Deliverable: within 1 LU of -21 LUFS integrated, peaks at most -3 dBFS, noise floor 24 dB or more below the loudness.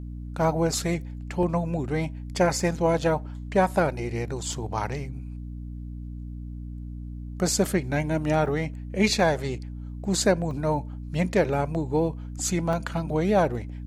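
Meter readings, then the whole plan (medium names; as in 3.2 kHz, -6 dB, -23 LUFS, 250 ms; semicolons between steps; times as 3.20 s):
dropouts 7; longest dropout 1.3 ms; hum 60 Hz; highest harmonic 300 Hz; hum level -33 dBFS; loudness -26.0 LUFS; peak level -8.5 dBFS; loudness target -21.0 LUFS
-> interpolate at 1.43/2.60/4.53/8.46/9.20/10.51/12.73 s, 1.3 ms; de-hum 60 Hz, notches 5; trim +5 dB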